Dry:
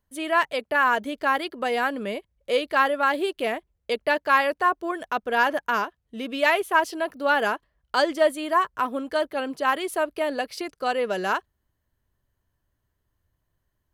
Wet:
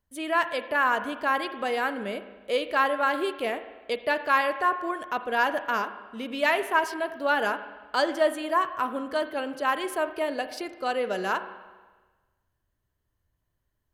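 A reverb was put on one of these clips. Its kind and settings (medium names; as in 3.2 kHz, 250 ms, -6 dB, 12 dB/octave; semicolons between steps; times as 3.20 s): spring tank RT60 1.3 s, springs 35/48 ms, chirp 55 ms, DRR 10.5 dB; trim -3 dB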